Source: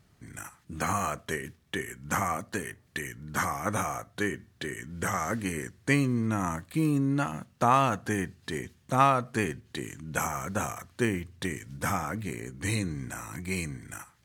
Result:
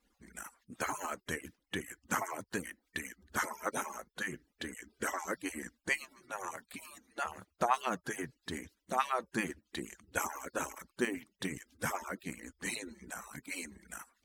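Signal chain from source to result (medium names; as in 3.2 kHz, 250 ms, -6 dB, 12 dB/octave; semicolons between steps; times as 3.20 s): harmonic-percussive separation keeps percussive; trim -3.5 dB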